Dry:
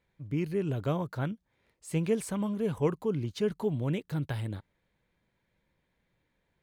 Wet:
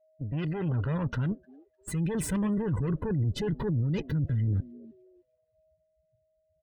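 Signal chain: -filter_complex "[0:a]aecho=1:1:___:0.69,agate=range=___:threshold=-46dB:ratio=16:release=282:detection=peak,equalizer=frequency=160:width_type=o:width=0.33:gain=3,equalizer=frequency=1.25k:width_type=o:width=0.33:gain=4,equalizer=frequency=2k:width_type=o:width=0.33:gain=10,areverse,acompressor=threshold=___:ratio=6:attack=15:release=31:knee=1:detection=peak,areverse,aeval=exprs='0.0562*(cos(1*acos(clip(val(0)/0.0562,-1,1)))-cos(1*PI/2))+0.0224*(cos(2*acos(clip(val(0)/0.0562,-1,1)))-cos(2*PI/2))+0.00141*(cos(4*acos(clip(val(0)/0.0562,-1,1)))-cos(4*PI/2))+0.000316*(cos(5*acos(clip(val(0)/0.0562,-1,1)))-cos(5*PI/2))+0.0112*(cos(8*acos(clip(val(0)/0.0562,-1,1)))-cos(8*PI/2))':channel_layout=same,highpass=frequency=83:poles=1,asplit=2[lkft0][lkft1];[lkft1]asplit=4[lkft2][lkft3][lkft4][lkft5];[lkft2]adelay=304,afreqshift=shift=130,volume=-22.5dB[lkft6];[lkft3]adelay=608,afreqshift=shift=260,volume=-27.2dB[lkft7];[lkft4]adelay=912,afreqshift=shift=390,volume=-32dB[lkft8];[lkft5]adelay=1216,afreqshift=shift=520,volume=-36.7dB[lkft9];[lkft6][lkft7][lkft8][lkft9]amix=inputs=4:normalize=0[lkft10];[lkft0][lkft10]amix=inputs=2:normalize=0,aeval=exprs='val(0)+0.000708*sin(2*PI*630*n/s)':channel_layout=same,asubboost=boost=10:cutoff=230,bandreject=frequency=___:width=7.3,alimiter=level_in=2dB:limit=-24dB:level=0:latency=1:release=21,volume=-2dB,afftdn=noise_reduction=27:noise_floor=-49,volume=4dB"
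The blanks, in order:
2, -8dB, -39dB, 2.2k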